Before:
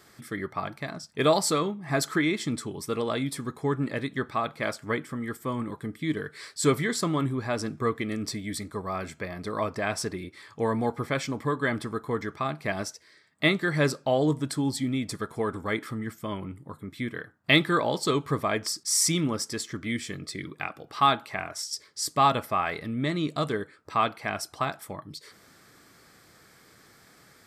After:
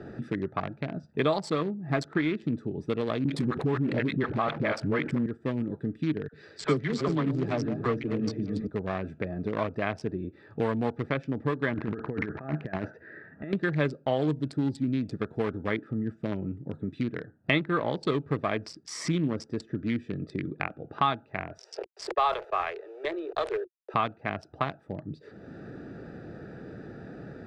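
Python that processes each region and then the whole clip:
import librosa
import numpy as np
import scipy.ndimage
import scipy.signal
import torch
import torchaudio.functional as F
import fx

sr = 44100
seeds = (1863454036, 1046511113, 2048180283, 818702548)

y = fx.chain(x, sr, fx.dispersion(late='highs', ms=43.0, hz=500.0),
    fx.env_flatten(amount_pct=70), at=(3.24, 5.26))
y = fx.chain(y, sr, fx.reverse_delay_fb(ms=190, feedback_pct=56, wet_db=-8),
    fx.lowpass_res(hz=6400.0, q=1.5),
    fx.dispersion(late='lows', ms=49.0, hz=740.0), at=(6.28, 8.67))
y = fx.chain(y, sr, fx.lowpass_res(hz=1700.0, q=3.3),
    fx.over_compress(threshold_db=-35.0, ratio=-1.0), at=(11.74, 13.53))
y = fx.chain(y, sr, fx.delta_hold(step_db=-42.0),
    fx.steep_highpass(hz=360.0, slope=96),
    fx.sustainer(db_per_s=98.0), at=(21.58, 23.94))
y = fx.wiener(y, sr, points=41)
y = scipy.signal.sosfilt(scipy.signal.butter(2, 3700.0, 'lowpass', fs=sr, output='sos'), y)
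y = fx.band_squash(y, sr, depth_pct=70)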